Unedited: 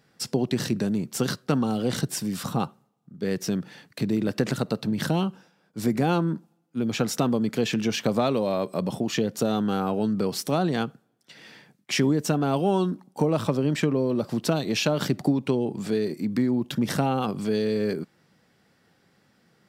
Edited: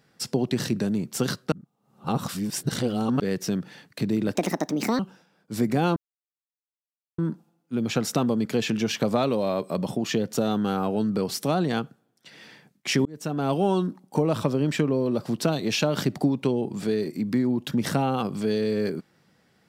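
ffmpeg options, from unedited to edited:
-filter_complex "[0:a]asplit=7[a][b][c][d][e][f][g];[a]atrim=end=1.522[h];[b]atrim=start=1.518:end=3.202,asetpts=PTS-STARTPTS,areverse[i];[c]atrim=start=3.198:end=4.354[j];[d]atrim=start=4.35:end=5.25,asetpts=PTS-STARTPTS,asetrate=61740,aresample=44100[k];[e]atrim=start=5.246:end=6.22,asetpts=PTS-STARTPTS,afade=t=out:st=0.97:d=0.004:c=hsin,apad=pad_dur=1.22[l];[f]atrim=start=6.22:end=12.09,asetpts=PTS-STARTPTS,afade=t=in:d=0.004:c=hsin,afade=t=out:st=5.866:d=0.004:c=hsin[m];[g]atrim=start=12.09,asetpts=PTS-STARTPTS,afade=t=in:d=0.46[n];[h][i]acrossfade=d=0.004:c1=hsin:c2=hsin[o];[o][j]acrossfade=d=0.004:c1=hsin:c2=hsin[p];[p][k]acrossfade=d=0.004:c1=hsin:c2=hsin[q];[l][m][n]concat=n=3:v=0:a=1[r];[q][r]acrossfade=d=0.004:c1=hsin:c2=hsin"

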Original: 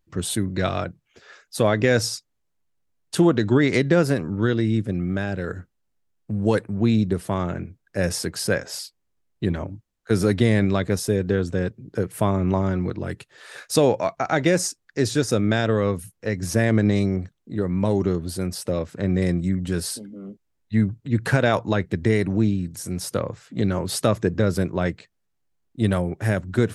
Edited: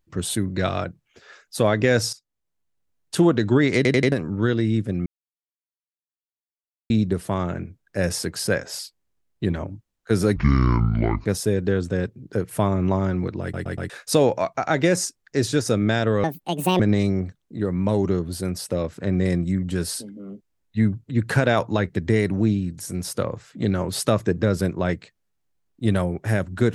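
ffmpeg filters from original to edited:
-filter_complex "[0:a]asplit=16[a][b][c][d][e][f][g][h][i][j][k][l][m][n][o][p];[a]atrim=end=2.13,asetpts=PTS-STARTPTS,afade=t=out:st=2.126:d=0.004:c=hsin:silence=0.149624[q];[b]atrim=start=2.13:end=3.852,asetpts=PTS-STARTPTS,afade=t=in:d=1.04:c=qsin:silence=0.149624[r];[c]atrim=start=3.758:end=3.852[s];[d]atrim=start=3.758:end=3.852[t];[e]atrim=start=3.758:end=3.852[u];[f]atrim=start=4.118:end=5.06,asetpts=PTS-STARTPTS,afade=t=out:st=0.938:d=0.004:c=hsin[v];[g]atrim=start=5.06:end=6.9,asetpts=PTS-STARTPTS,volume=0[w];[h]atrim=start=6.9:end=10.364,asetpts=PTS-STARTPTS,afade=t=in:d=0.004:c=hsin[x];[i]atrim=start=10.36:end=10.88,asetpts=PTS-STARTPTS,asetrate=25578,aresample=44100[y];[j]atrim=start=10.876:end=13.162[z];[k]atrim=start=13.038:end=13.162[aa];[l]atrim=start=13.038:end=13.162[ab];[m]atrim=start=13.038:end=13.162[ac];[n]atrim=start=13.518:end=15.864[ad];[o]atrim=start=15.86:end=16.76,asetpts=PTS-STARTPTS,asetrate=71001,aresample=44100,atrim=end_sample=24652,asetpts=PTS-STARTPTS[ae];[p]atrim=start=16.756[af];[q][r]concat=n=2:v=0:a=1[ag];[ag][s]acrossfade=d=0.004:c1=hsin:c2=hsin[ah];[ah][t]acrossfade=d=0.004:c1=hsin:c2=hsin[ai];[ai][u]acrossfade=d=0.004:c1=hsin:c2=hsin[aj];[v][w][x]concat=n=3:v=0:a=1[ak];[aj][ak]acrossfade=d=0.004:c1=hsin:c2=hsin[al];[al][y]acrossfade=d=0.004:c1=hsin:c2=hsin[am];[am][z]acrossfade=d=0.004:c1=hsin:c2=hsin[an];[an][aa]acrossfade=d=0.004:c1=hsin:c2=hsin[ao];[ao][ab]acrossfade=d=0.004:c1=hsin:c2=hsin[ap];[ap][ac]acrossfade=d=0.004:c1=hsin:c2=hsin[aq];[aq][ad]acrossfade=d=0.004:c1=hsin:c2=hsin[ar];[ar][ae]acrossfade=d=0.004:c1=hsin:c2=hsin[as];[as][af]acrossfade=d=0.004:c1=hsin:c2=hsin"

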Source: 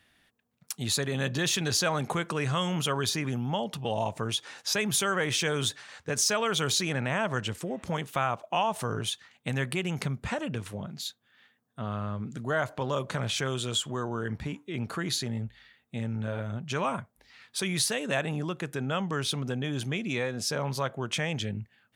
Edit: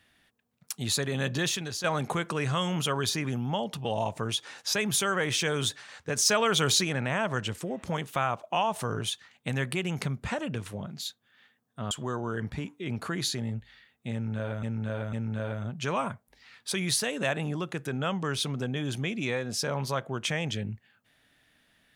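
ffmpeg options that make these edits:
-filter_complex "[0:a]asplit=7[a][b][c][d][e][f][g];[a]atrim=end=1.84,asetpts=PTS-STARTPTS,afade=t=out:st=1.44:d=0.4:c=qua:silence=0.334965[h];[b]atrim=start=1.84:end=6.252,asetpts=PTS-STARTPTS,afade=t=in:d=0.004:c=hsin:silence=0.334965[i];[c]atrim=start=6.248:end=6.842,asetpts=PTS-STARTPTS,volume=3dB[j];[d]atrim=start=6.838:end=11.912[k];[e]atrim=start=13.788:end=16.512[l];[f]atrim=start=16.008:end=16.512[m];[g]atrim=start=16.008[n];[h][i]concat=n=2:v=0:a=1[o];[o][j]acrossfade=d=0.004:c1=hsin:c2=hsin[p];[p][k]acrossfade=d=0.004:c1=hsin:c2=hsin[q];[q][l]acrossfade=d=0.004:c1=hsin:c2=hsin[r];[r][m]acrossfade=d=0.004:c1=hsin:c2=hsin[s];[s][n]acrossfade=d=0.004:c1=hsin:c2=hsin"

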